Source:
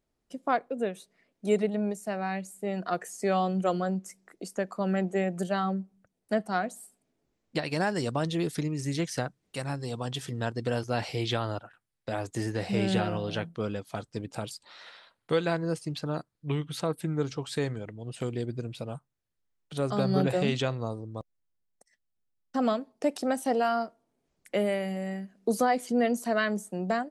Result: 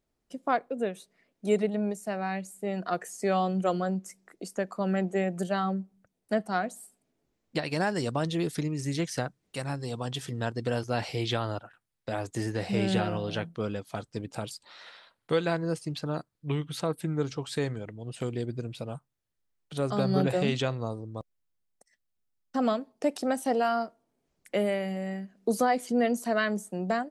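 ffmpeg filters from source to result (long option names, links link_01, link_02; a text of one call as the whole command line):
ffmpeg -i in.wav -filter_complex "[0:a]asettb=1/sr,asplit=3[link_01][link_02][link_03];[link_01]atrim=end=24.704[link_04];[link_02]atrim=start=24.7:end=25.37,asetpts=PTS-STARTPTS,afade=type=in:duration=0.004:curve=qsin,afade=type=out:start_time=0.666:duration=0.004:curve=qsin,equalizer=frequency=9800:width_type=o:width=0.65:gain=-5.5[link_05];[link_03]atrim=start=25.366[link_06];[link_04][link_05]acrossfade=duration=0.004:curve1=hsin:curve2=qsin[link_07];[link_07][link_06]acrossfade=duration=0.004:curve1=qsin:curve2=hsin" out.wav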